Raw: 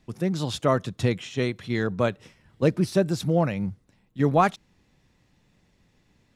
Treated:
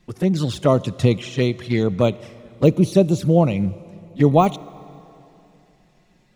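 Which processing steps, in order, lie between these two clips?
de-esser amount 80%; touch-sensitive flanger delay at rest 5.7 ms, full sweep at -21 dBFS; plate-style reverb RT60 2.9 s, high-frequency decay 0.9×, DRR 18.5 dB; trim +7.5 dB

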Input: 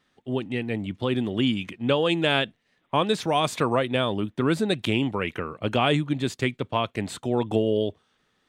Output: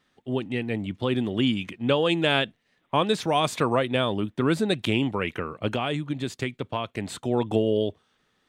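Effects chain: 5.71–7.22 s: compression 2.5:1, threshold -26 dBFS, peak gain reduction 6.5 dB

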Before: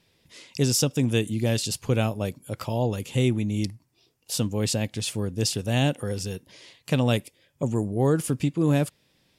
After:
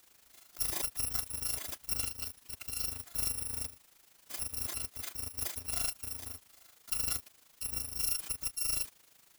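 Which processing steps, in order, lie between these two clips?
bit-reversed sample order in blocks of 256 samples; added noise white -51 dBFS; AM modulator 26 Hz, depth 55%; trim -9 dB

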